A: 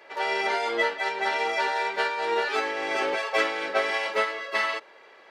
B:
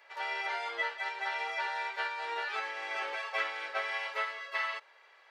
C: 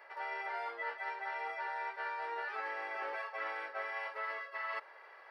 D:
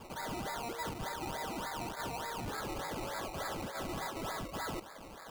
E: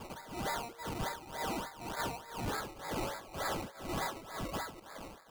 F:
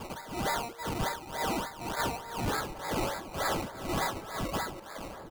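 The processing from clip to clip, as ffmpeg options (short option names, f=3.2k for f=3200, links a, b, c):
-filter_complex "[0:a]acrossover=split=3900[a][b];[b]acompressor=threshold=-48dB:ratio=4:attack=1:release=60[c];[a][c]amix=inputs=2:normalize=0,highpass=840,volume=-6.5dB"
-af "superequalizer=12b=0.562:13b=0.398:14b=0.708:15b=0.282,areverse,acompressor=threshold=-42dB:ratio=16,areverse,highshelf=f=2.8k:g=-9.5,volume=7.5dB"
-filter_complex "[0:a]acrossover=split=1700[a][b];[a]alimiter=level_in=15.5dB:limit=-24dB:level=0:latency=1:release=28,volume=-15.5dB[c];[c][b]amix=inputs=2:normalize=0,acrusher=samples=21:mix=1:aa=0.000001:lfo=1:lforange=12.6:lforate=3.4,asoftclip=type=tanh:threshold=-39.5dB,volume=6dB"
-af "tremolo=f=2:d=0.85,volume=4dB"
-filter_complex "[0:a]asplit=2[a][b];[b]adelay=1691,volume=-13dB,highshelf=f=4k:g=-38[c];[a][c]amix=inputs=2:normalize=0,volume=5.5dB"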